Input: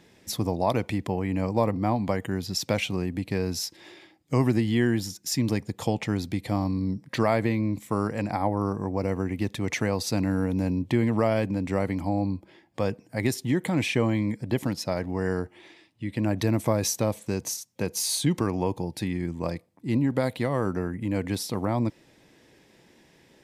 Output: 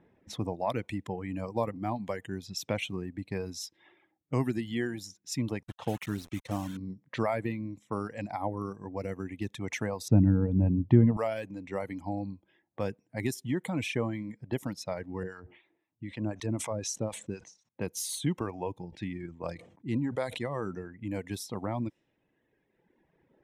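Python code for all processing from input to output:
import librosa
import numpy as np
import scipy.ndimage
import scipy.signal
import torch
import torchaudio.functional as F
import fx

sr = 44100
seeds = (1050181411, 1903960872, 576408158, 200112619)

y = fx.chain(x, sr, fx.lowpass(hz=5800.0, slope=24),
    fx.quant_dither(seeds[0], bits=6, dither='none'), at=(5.63, 6.77))
y = fx.chain(y, sr, fx.lowpass(hz=4800.0, slope=12),
    fx.tilt_eq(slope=-4.5),
    fx.notch(hz=2200.0, q=16.0), at=(10.08, 11.17))
y = fx.chain(y, sr, fx.lowpass(hz=8700.0, slope=24),
    fx.harmonic_tremolo(hz=3.9, depth_pct=70, crossover_hz=730.0),
    fx.sustainer(db_per_s=92.0), at=(15.23, 17.69))
y = fx.chain(y, sr, fx.lowpass(hz=9900.0, slope=24),
    fx.sustainer(db_per_s=65.0), at=(18.88, 20.95))
y = fx.dereverb_blind(y, sr, rt60_s=1.8)
y = fx.env_lowpass(y, sr, base_hz=1300.0, full_db=-26.0)
y = fx.peak_eq(y, sr, hz=4600.0, db=-9.0, octaves=0.2)
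y = y * 10.0 ** (-5.5 / 20.0)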